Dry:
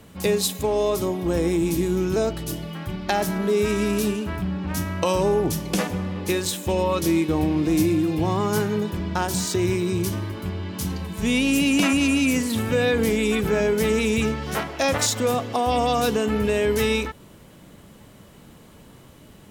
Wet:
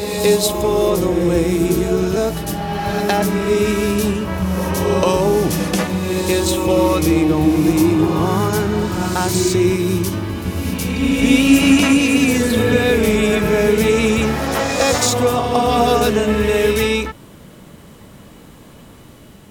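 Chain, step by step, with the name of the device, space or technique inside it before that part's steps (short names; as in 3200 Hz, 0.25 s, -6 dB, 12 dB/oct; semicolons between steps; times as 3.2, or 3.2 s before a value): reverse reverb (reverse; reverb RT60 2.8 s, pre-delay 94 ms, DRR 2 dB; reverse); gain +4.5 dB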